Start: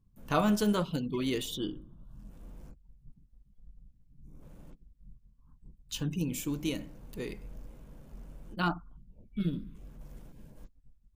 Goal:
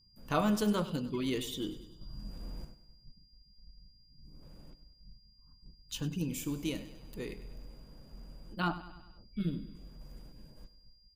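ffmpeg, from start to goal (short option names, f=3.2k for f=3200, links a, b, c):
-filter_complex "[0:a]aeval=exprs='val(0)+0.000794*sin(2*PI*4800*n/s)':c=same,asettb=1/sr,asplit=3[a][b][c];[a]atrim=end=2.014[d];[b]atrim=start=2.01:end=2.65,asetpts=PTS-STARTPTS,afade=t=in:d=0.004:c=qsin,afade=t=out:st=0.636:d=0.004:c=qsin,acontrast=87[e];[c]atrim=start=2.646[f];[d][e]acrossfade=d=0.004:c1=hsin:c2=qsin[g];[g][f]acrossfade=d=0.004:c1=qsin:c2=hsin,aecho=1:1:99|198|297|396|495:0.178|0.0978|0.0538|0.0296|0.0163,volume=-2.5dB"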